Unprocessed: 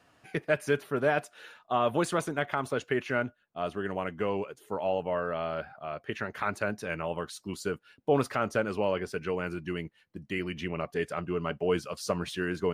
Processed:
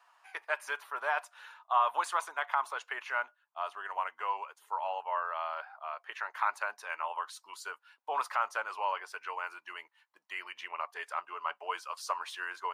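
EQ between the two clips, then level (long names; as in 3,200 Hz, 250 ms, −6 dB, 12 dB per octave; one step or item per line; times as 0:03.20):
four-pole ladder high-pass 870 Hz, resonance 65%
+6.5 dB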